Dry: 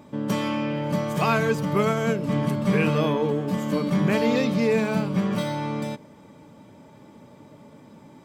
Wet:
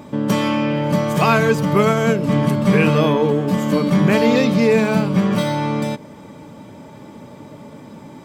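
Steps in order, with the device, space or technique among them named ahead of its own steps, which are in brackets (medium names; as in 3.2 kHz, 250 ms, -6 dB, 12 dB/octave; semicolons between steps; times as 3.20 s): parallel compression (in parallel at -5 dB: compression, threshold -34 dBFS, peak gain reduction 15.5 dB); on the sum: trim +6 dB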